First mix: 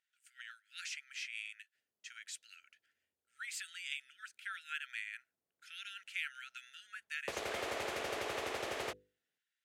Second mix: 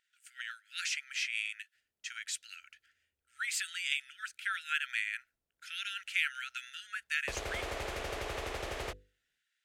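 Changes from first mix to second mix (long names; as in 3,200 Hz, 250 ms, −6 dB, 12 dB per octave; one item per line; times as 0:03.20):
speech +8.5 dB
master: remove high-pass filter 170 Hz 12 dB per octave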